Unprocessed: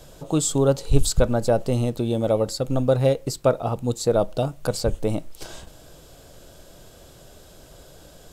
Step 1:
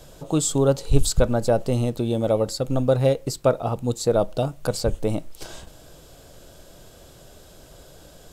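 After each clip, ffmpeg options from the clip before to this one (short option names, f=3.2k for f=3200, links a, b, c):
-af anull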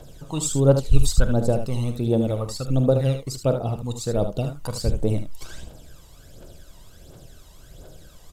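-filter_complex "[0:a]aphaser=in_gain=1:out_gain=1:delay=1.1:decay=0.68:speed=1.4:type=triangular,asplit=2[a][b];[b]aecho=0:1:45|75:0.211|0.376[c];[a][c]amix=inputs=2:normalize=0,volume=-5.5dB"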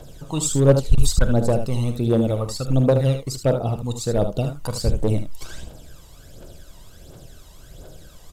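-af "aeval=exprs='clip(val(0),-1,0.224)':c=same,volume=2.5dB"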